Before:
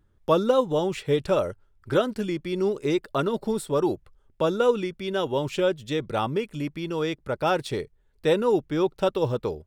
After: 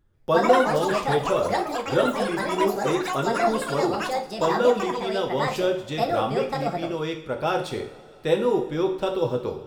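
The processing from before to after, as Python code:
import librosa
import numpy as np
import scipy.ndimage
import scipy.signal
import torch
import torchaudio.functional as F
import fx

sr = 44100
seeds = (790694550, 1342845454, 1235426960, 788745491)

y = fx.rev_double_slope(x, sr, seeds[0], early_s=0.53, late_s=3.0, knee_db=-18, drr_db=2.5)
y = fx.echo_pitch(y, sr, ms=142, semitones=6, count=3, db_per_echo=-3.0)
y = y * librosa.db_to_amplitude(-2.5)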